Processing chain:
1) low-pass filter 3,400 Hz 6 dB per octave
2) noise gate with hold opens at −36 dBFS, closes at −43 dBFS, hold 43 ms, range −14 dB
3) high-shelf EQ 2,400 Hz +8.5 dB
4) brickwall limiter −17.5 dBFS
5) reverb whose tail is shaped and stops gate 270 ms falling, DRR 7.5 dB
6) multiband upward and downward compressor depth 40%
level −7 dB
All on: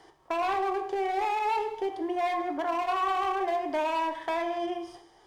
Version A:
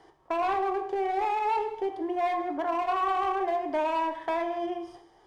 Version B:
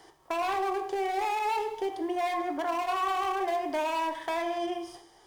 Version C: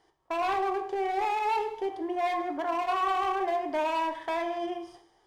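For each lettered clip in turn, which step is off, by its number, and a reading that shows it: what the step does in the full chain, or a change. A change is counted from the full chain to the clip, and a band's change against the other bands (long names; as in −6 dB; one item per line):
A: 3, 4 kHz band −4.5 dB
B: 1, 4 kHz band +2.0 dB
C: 6, change in momentary loudness spread +1 LU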